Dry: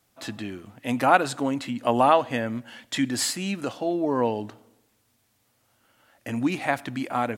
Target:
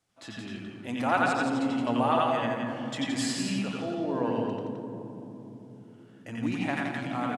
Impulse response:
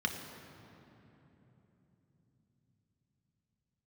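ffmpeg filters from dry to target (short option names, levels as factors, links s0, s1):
-filter_complex "[0:a]lowpass=f=10000:w=0.5412,lowpass=f=10000:w=1.3066,aecho=1:1:170:0.562,asplit=2[s0][s1];[1:a]atrim=start_sample=2205,adelay=89[s2];[s1][s2]afir=irnorm=-1:irlink=0,volume=0.631[s3];[s0][s3]amix=inputs=2:normalize=0,volume=0.355"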